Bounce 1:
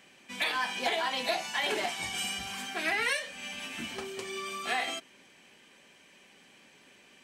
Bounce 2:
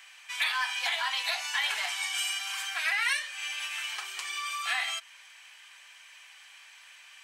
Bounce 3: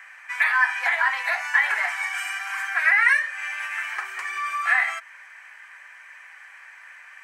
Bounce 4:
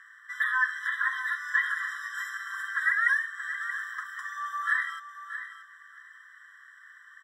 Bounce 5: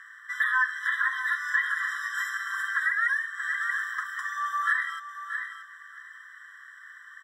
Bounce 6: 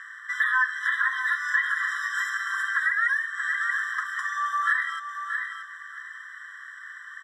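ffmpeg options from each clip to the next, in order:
ffmpeg -i in.wav -filter_complex "[0:a]highpass=frequency=1000:width=0.5412,highpass=frequency=1000:width=1.3066,asplit=2[link_01][link_02];[link_02]acompressor=threshold=-41dB:ratio=6,volume=2dB[link_03];[link_01][link_03]amix=inputs=2:normalize=0" out.wav
ffmpeg -i in.wav -af "highshelf=frequency=2500:width_type=q:width=3:gain=-10.5,volume=6.5dB" out.wav
ffmpeg -i in.wav -af "aecho=1:1:629|1258:0.282|0.0507,afftfilt=real='re*eq(mod(floor(b*sr/1024/1000),2),1)':imag='im*eq(mod(floor(b*sr/1024/1000),2),1)':win_size=1024:overlap=0.75,volume=-5.5dB" out.wav
ffmpeg -i in.wav -af "alimiter=limit=-20dB:level=0:latency=1:release=393,volume=4.5dB" out.wav
ffmpeg -i in.wav -filter_complex "[0:a]lowpass=10000,asplit=2[link_01][link_02];[link_02]acompressor=threshold=-36dB:ratio=6,volume=-0.5dB[link_03];[link_01][link_03]amix=inputs=2:normalize=0" out.wav

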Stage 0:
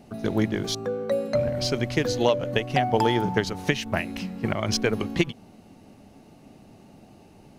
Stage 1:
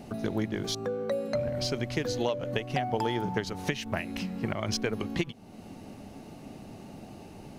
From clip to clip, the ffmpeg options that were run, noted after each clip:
ffmpeg -i in.wav -af "acompressor=threshold=-41dB:ratio=2,volume=5dB" out.wav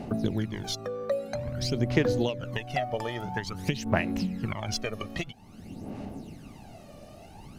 ffmpeg -i in.wav -af "aphaser=in_gain=1:out_gain=1:delay=1.7:decay=0.68:speed=0.5:type=sinusoidal,volume=-2.5dB" out.wav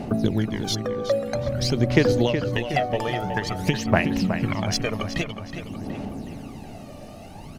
ffmpeg -i in.wav -filter_complex "[0:a]asplit=2[link_01][link_02];[link_02]adelay=369,lowpass=frequency=4000:poles=1,volume=-8.5dB,asplit=2[link_03][link_04];[link_04]adelay=369,lowpass=frequency=4000:poles=1,volume=0.52,asplit=2[link_05][link_06];[link_06]adelay=369,lowpass=frequency=4000:poles=1,volume=0.52,asplit=2[link_07][link_08];[link_08]adelay=369,lowpass=frequency=4000:poles=1,volume=0.52,asplit=2[link_09][link_10];[link_10]adelay=369,lowpass=frequency=4000:poles=1,volume=0.52,asplit=2[link_11][link_12];[link_12]adelay=369,lowpass=frequency=4000:poles=1,volume=0.52[link_13];[link_01][link_03][link_05][link_07][link_09][link_11][link_13]amix=inputs=7:normalize=0,volume=6dB" out.wav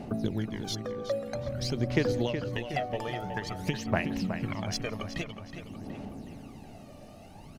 ffmpeg -i in.wav -filter_complex "[0:a]asplit=2[link_01][link_02];[link_02]adelay=169.1,volume=-25dB,highshelf=frequency=4000:gain=-3.8[link_03];[link_01][link_03]amix=inputs=2:normalize=0,volume=-8.5dB" out.wav

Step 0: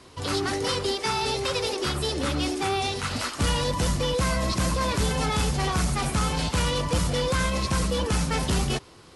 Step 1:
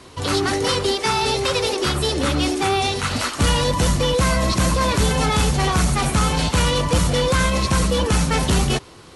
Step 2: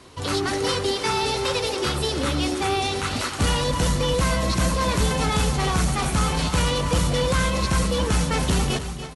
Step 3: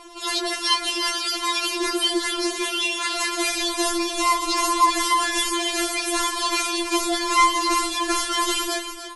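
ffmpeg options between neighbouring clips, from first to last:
ffmpeg -i in.wav -af "bandreject=frequency=5000:width=17,volume=6.5dB" out.wav
ffmpeg -i in.wav -af "aecho=1:1:288|714:0.282|0.158,volume=-4dB" out.wav
ffmpeg -i in.wav -af "afftfilt=real='re*4*eq(mod(b,16),0)':imag='im*4*eq(mod(b,16),0)':win_size=2048:overlap=0.75,volume=6.5dB" out.wav

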